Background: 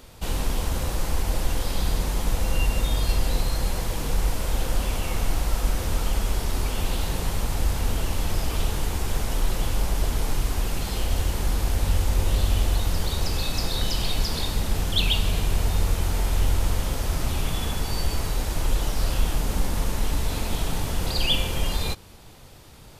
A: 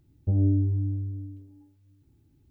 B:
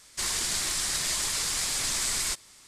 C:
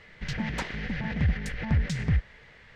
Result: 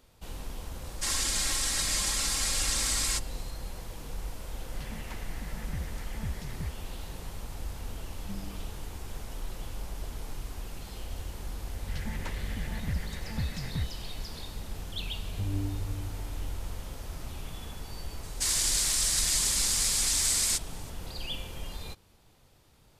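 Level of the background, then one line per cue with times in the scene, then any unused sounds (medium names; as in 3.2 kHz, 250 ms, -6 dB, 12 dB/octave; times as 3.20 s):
background -14 dB
0.84 s: add B -2.5 dB + comb 3.7 ms, depth 69%
4.52 s: add C -13 dB
8.00 s: add A -4 dB + Butterworth band-pass 190 Hz, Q 3.8
11.67 s: add C -8.5 dB
15.11 s: add A -10.5 dB
18.23 s: add B -6.5 dB + treble shelf 3 kHz +10.5 dB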